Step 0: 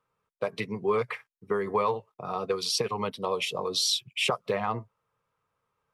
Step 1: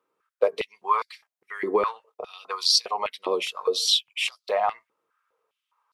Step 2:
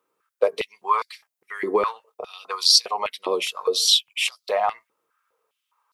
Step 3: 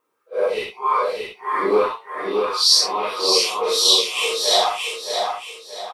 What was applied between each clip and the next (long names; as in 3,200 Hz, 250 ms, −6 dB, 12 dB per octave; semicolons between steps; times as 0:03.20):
high-pass on a step sequencer 4.9 Hz 320–4,400 Hz
high-shelf EQ 6,100 Hz +8 dB; level +1.5 dB
random phases in long frames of 200 ms; on a send: repeating echo 625 ms, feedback 35%, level −4 dB; on the sum: level +2.5 dB